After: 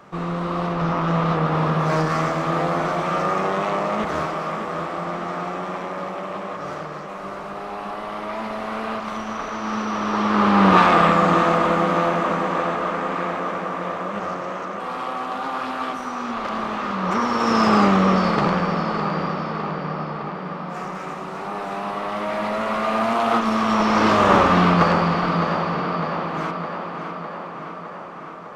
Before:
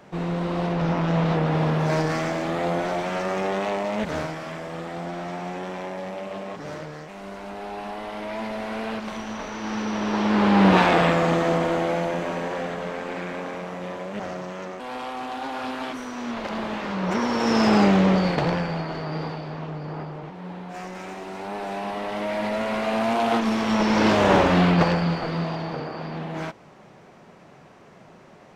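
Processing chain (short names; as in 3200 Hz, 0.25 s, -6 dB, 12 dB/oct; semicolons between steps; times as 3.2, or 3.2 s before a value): bell 1200 Hz +13 dB 0.34 oct; tape echo 0.608 s, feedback 74%, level -7 dB, low-pass 4900 Hz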